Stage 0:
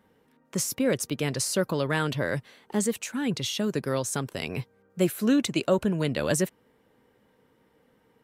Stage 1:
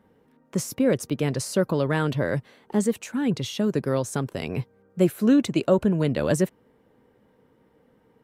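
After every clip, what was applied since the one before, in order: tilt shelf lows +4.5 dB, about 1400 Hz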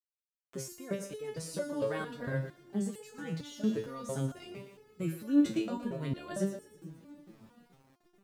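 split-band echo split 340 Hz, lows 0.43 s, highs 0.117 s, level -10 dB; sample gate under -46 dBFS; stepped resonator 4.4 Hz 110–430 Hz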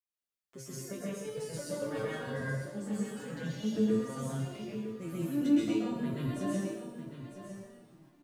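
flange 1.5 Hz, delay 7.8 ms, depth 1.8 ms, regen +50%; on a send: echo 0.952 s -11 dB; on the sum: plate-style reverb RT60 0.78 s, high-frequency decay 0.85×, pre-delay 0.115 s, DRR -6.5 dB; gain -2.5 dB

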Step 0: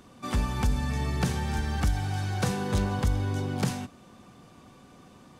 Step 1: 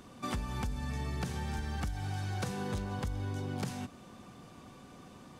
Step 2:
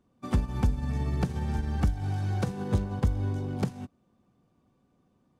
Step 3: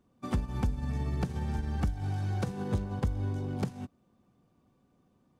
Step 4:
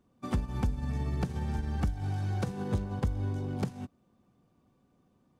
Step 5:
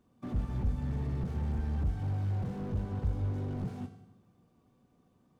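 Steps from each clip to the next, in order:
compressor, threshold -33 dBFS, peak gain reduction 12 dB
tilt shelf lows +5.5 dB, about 870 Hz; upward expander 2.5:1, over -45 dBFS; gain +8.5 dB
compressor 1.5:1, threshold -33 dBFS, peak gain reduction 5.5 dB
nothing audible
on a send at -10 dB: reverb RT60 0.90 s, pre-delay 3 ms; on the sum: slew limiter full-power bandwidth 4.7 Hz

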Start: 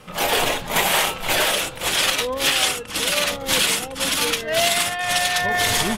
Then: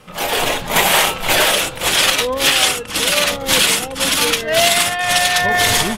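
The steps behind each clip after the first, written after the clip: AGC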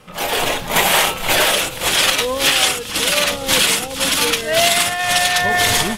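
thin delay 0.414 s, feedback 54%, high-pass 2800 Hz, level -16 dB; gain -1 dB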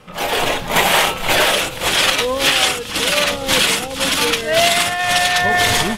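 high shelf 6100 Hz -6.5 dB; gain +1.5 dB

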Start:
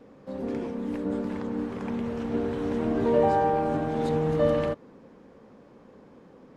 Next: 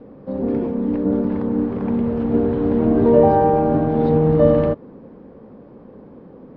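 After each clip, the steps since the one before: steep low-pass 5000 Hz 36 dB/oct; tilt shelf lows +8.5 dB, about 1300 Hz; gain +3 dB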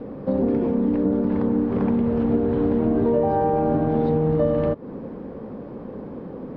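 compressor 6:1, threshold -25 dBFS, peak gain reduction 16 dB; gain +7 dB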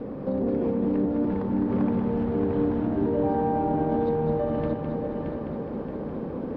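limiter -19 dBFS, peak gain reduction 9.5 dB; multi-head echo 0.208 s, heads first and third, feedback 64%, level -6.5 dB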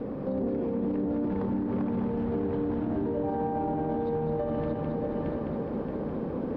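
limiter -22 dBFS, peak gain reduction 8 dB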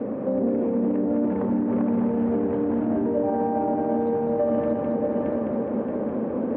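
speaker cabinet 120–2700 Hz, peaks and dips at 160 Hz -10 dB, 230 Hz +6 dB, 590 Hz +6 dB; gain +4 dB

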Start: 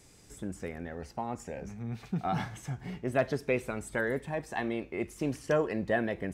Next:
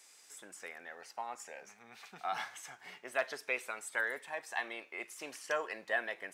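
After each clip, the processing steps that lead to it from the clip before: HPF 1000 Hz 12 dB/oct; gain +1 dB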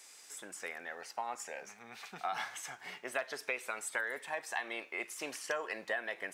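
compressor 6:1, threshold -37 dBFS, peak gain reduction 10 dB; gain +4.5 dB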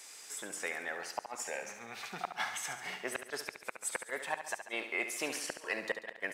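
flipped gate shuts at -25 dBFS, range -39 dB; feedback echo 70 ms, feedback 56%, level -9.5 dB; gain +4.5 dB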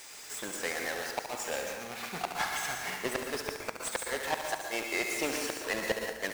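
half-waves squared off; plate-style reverb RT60 0.76 s, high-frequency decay 0.75×, pre-delay 0.105 s, DRR 4.5 dB; slew limiter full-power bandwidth 190 Hz

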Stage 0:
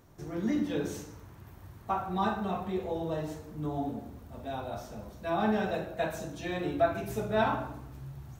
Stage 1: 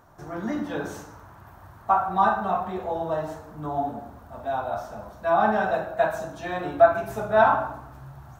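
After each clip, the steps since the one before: band shelf 1000 Hz +11 dB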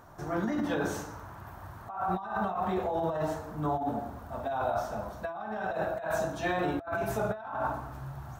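negative-ratio compressor -30 dBFS, ratio -1; gain -2.5 dB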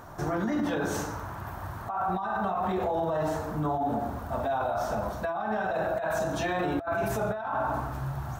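limiter -28.5 dBFS, peak gain reduction 10 dB; gain +7.5 dB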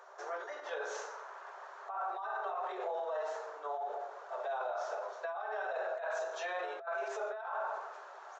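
rippled Chebyshev high-pass 390 Hz, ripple 3 dB; downsampling 16000 Hz; ending taper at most 110 dB/s; gain -6 dB

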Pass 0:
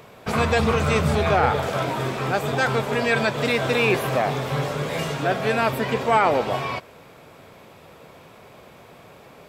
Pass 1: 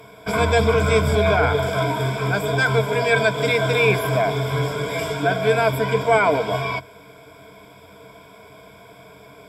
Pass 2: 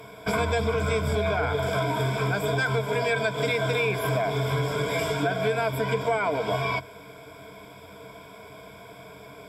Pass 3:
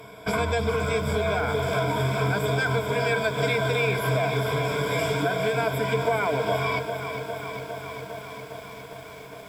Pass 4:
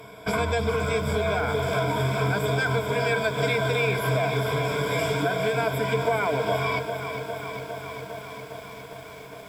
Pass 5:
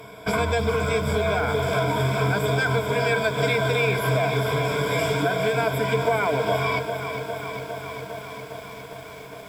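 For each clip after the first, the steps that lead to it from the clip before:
ripple EQ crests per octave 1.7, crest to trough 16 dB; gain -1.5 dB
compressor, threshold -22 dBFS, peak gain reduction 10.5 dB
lo-fi delay 0.406 s, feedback 80%, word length 8-bit, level -9 dB
nothing audible
companded quantiser 8-bit; gain +2 dB

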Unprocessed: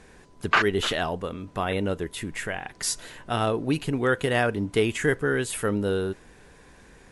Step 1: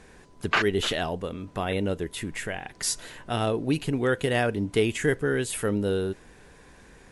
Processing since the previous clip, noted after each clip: dynamic EQ 1200 Hz, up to -5 dB, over -41 dBFS, Q 1.3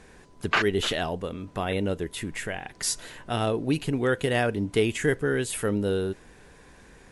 nothing audible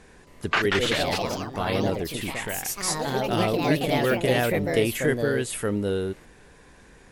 echoes that change speed 0.27 s, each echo +3 st, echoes 3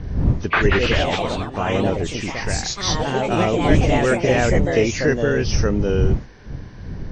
nonlinear frequency compression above 1900 Hz 1.5:1; wind noise 110 Hz -28 dBFS; gain +5 dB

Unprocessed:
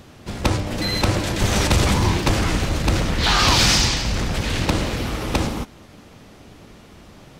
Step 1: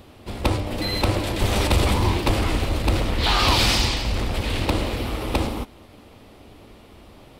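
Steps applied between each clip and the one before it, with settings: fifteen-band EQ 160 Hz -9 dB, 1600 Hz -6 dB, 6300 Hz -10 dB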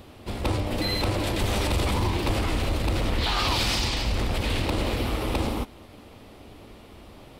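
limiter -17 dBFS, peak gain reduction 8.5 dB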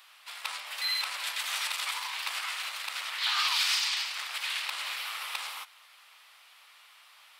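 HPF 1200 Hz 24 dB/oct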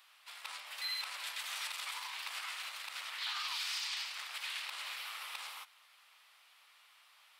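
limiter -22 dBFS, peak gain reduction 5.5 dB; gain -7.5 dB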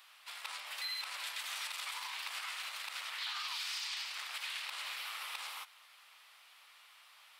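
compressor 2:1, threshold -44 dBFS, peak gain reduction 5 dB; gain +3.5 dB

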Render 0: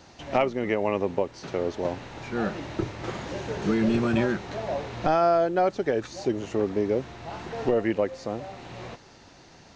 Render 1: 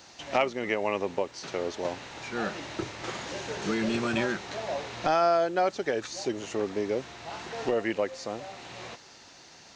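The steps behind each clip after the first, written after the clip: tilt +2.5 dB/oct; gain -1 dB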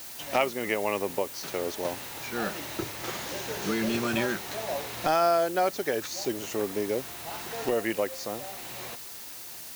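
added noise white -48 dBFS; high shelf 7300 Hz +7.5 dB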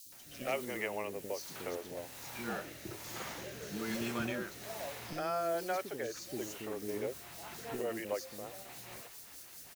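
rotary speaker horn 1.2 Hz, later 5 Hz, at 6.39; three bands offset in time highs, lows, mids 60/120 ms, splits 360/3700 Hz; gain -5.5 dB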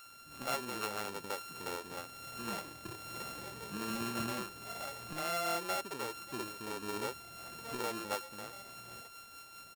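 sample sorter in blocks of 32 samples; gain -1 dB

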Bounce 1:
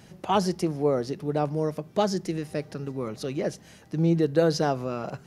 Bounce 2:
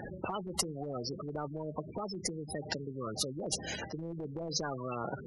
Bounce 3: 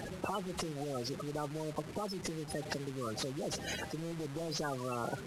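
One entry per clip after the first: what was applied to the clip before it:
spectral gate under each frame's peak -15 dB strong; limiter -21 dBFS, peak gain reduction 10 dB; spectral compressor 4:1; gain +5.5 dB
delta modulation 64 kbps, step -42 dBFS

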